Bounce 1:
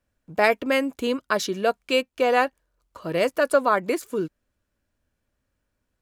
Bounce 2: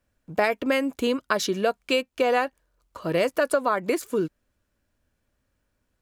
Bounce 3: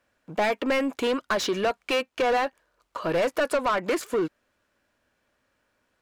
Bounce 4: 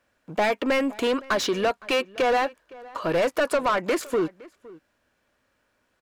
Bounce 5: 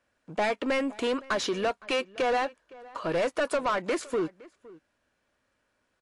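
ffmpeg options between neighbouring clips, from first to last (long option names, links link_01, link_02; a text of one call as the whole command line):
ffmpeg -i in.wav -af "acompressor=threshold=-21dB:ratio=6,volume=2.5dB" out.wav
ffmpeg -i in.wav -filter_complex "[0:a]asplit=2[link_01][link_02];[link_02]highpass=frequency=720:poles=1,volume=23dB,asoftclip=type=tanh:threshold=-8.5dB[link_03];[link_01][link_03]amix=inputs=2:normalize=0,lowpass=frequency=2800:poles=1,volume=-6dB,volume=-7dB" out.wav
ffmpeg -i in.wav -filter_complex "[0:a]asplit=2[link_01][link_02];[link_02]adelay=513.1,volume=-21dB,highshelf=frequency=4000:gain=-11.5[link_03];[link_01][link_03]amix=inputs=2:normalize=0,volume=1.5dB" out.wav
ffmpeg -i in.wav -af "volume=-4dB" -ar 24000 -c:a libmp3lame -b:a 56k out.mp3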